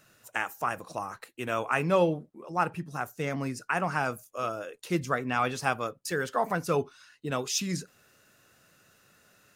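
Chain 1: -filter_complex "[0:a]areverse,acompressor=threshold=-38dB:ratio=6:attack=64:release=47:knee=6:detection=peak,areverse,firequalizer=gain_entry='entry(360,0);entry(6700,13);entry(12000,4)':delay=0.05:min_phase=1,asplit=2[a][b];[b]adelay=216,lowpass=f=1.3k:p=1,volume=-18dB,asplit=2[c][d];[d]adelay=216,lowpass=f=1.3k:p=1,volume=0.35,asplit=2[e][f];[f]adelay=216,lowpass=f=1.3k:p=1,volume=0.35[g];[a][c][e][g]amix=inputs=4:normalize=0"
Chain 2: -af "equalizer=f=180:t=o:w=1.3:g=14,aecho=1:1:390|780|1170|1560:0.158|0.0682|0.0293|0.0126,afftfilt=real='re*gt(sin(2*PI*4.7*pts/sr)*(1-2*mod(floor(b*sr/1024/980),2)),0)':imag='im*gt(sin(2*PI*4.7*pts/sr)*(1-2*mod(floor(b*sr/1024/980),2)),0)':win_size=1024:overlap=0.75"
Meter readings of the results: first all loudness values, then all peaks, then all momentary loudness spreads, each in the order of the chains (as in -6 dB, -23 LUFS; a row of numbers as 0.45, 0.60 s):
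-32.5, -28.0 LUFS; -9.5, -7.5 dBFS; 8, 16 LU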